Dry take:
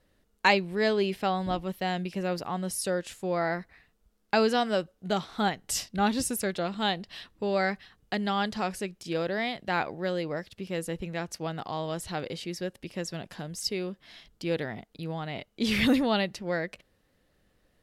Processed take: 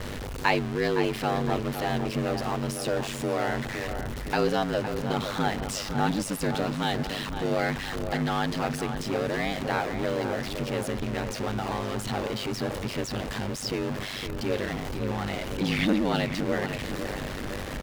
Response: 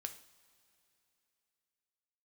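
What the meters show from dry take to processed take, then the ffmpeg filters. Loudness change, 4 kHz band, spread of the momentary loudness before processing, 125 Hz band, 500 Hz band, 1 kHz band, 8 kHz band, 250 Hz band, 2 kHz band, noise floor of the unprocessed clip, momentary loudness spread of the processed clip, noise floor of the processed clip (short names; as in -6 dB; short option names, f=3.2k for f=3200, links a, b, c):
+1.0 dB, +0.5 dB, 12 LU, +6.0 dB, +1.5 dB, +1.0 dB, -1.0 dB, +2.0 dB, +1.0 dB, -70 dBFS, 6 LU, -35 dBFS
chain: -filter_complex "[0:a]aeval=exprs='val(0)+0.5*0.0562*sgn(val(0))':c=same,lowpass=f=3.8k:p=1,bandreject=f=640:w=15,aeval=exprs='val(0)*sin(2*PI*49*n/s)':c=same,asplit=2[a][b];[b]adelay=511,lowpass=f=2.3k:p=1,volume=-8dB,asplit=2[c][d];[d]adelay=511,lowpass=f=2.3k:p=1,volume=0.53,asplit=2[e][f];[f]adelay=511,lowpass=f=2.3k:p=1,volume=0.53,asplit=2[g][h];[h]adelay=511,lowpass=f=2.3k:p=1,volume=0.53,asplit=2[i][j];[j]adelay=511,lowpass=f=2.3k:p=1,volume=0.53,asplit=2[k][l];[l]adelay=511,lowpass=f=2.3k:p=1,volume=0.53[m];[c][e][g][i][k][m]amix=inputs=6:normalize=0[n];[a][n]amix=inputs=2:normalize=0"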